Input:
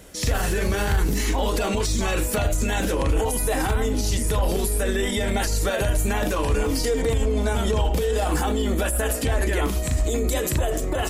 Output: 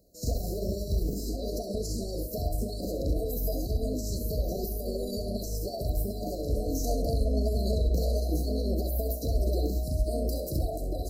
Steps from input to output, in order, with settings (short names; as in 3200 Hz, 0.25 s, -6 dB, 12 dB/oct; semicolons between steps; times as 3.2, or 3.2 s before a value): bell 7400 Hz -10 dB 0.5 oct; formant shift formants +4 st; brick-wall FIR band-stop 740–3900 Hz; on a send: flutter echo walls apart 11.3 m, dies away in 0.43 s; on the sum: upward expander 1.5:1, over -41 dBFS; gain -4.5 dB